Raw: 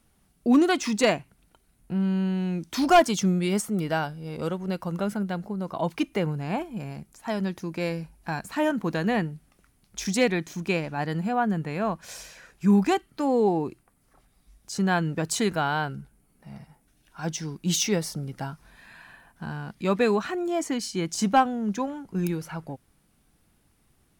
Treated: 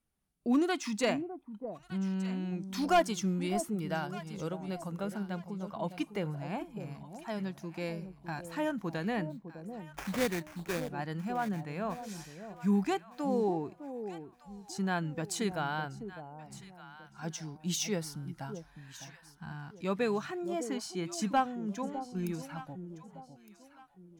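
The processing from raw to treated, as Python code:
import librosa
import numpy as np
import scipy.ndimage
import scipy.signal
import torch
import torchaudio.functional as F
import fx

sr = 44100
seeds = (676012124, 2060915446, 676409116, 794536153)

y = fx.sample_hold(x, sr, seeds[0], rate_hz=4100.0, jitter_pct=20, at=(9.29, 10.88), fade=0.02)
y = fx.noise_reduce_blind(y, sr, reduce_db=10)
y = fx.echo_alternate(y, sr, ms=606, hz=820.0, feedback_pct=52, wet_db=-9.5)
y = y * librosa.db_to_amplitude(-8.5)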